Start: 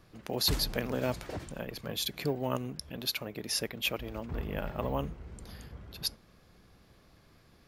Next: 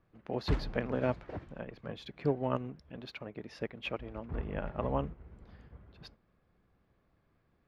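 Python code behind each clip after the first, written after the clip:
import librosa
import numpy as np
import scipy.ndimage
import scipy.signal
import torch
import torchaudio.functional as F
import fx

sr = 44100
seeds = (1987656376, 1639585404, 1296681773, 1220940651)

y = scipy.signal.sosfilt(scipy.signal.butter(2, 2100.0, 'lowpass', fs=sr, output='sos'), x)
y = fx.upward_expand(y, sr, threshold_db=-54.0, expansion=1.5)
y = y * librosa.db_to_amplitude(2.5)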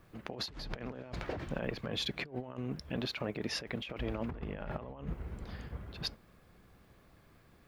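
y = fx.high_shelf(x, sr, hz=3000.0, db=9.5)
y = fx.over_compress(y, sr, threshold_db=-44.0, ratio=-1.0)
y = y * librosa.db_to_amplitude(3.5)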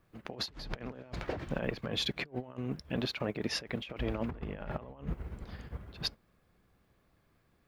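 y = fx.upward_expand(x, sr, threshold_db=-57.0, expansion=1.5)
y = y * librosa.db_to_amplitude(3.5)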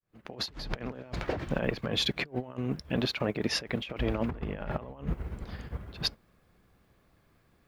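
y = fx.fade_in_head(x, sr, length_s=0.54)
y = y * librosa.db_to_amplitude(4.5)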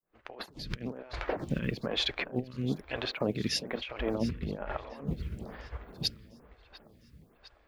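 y = fx.echo_feedback(x, sr, ms=702, feedback_pct=52, wet_db=-16.0)
y = fx.stagger_phaser(y, sr, hz=1.1)
y = y * librosa.db_to_amplitude(1.5)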